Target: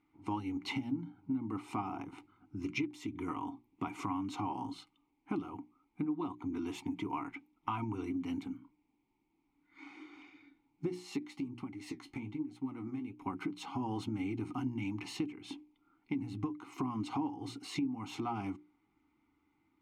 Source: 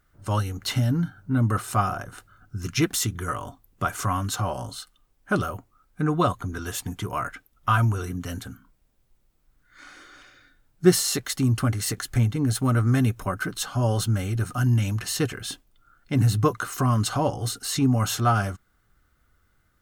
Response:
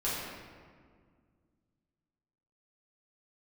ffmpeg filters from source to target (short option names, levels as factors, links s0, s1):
-filter_complex "[0:a]asplit=3[s0][s1][s2];[s0]bandpass=f=300:t=q:w=8,volume=1[s3];[s1]bandpass=f=870:t=q:w=8,volume=0.501[s4];[s2]bandpass=f=2240:t=q:w=8,volume=0.355[s5];[s3][s4][s5]amix=inputs=3:normalize=0,acompressor=threshold=0.00708:ratio=8,asplit=3[s6][s7][s8];[s6]afade=t=out:st=11.21:d=0.02[s9];[s7]flanger=delay=5.3:depth=9.1:regen=48:speed=1.2:shape=sinusoidal,afade=t=in:st=11.21:d=0.02,afade=t=out:st=13.25:d=0.02[s10];[s8]afade=t=in:st=13.25:d=0.02[s11];[s9][s10][s11]amix=inputs=3:normalize=0,bandreject=f=60:t=h:w=6,bandreject=f=120:t=h:w=6,bandreject=f=180:t=h:w=6,bandreject=f=240:t=h:w=6,bandreject=f=300:t=h:w=6,bandreject=f=360:t=h:w=6,volume=3.35"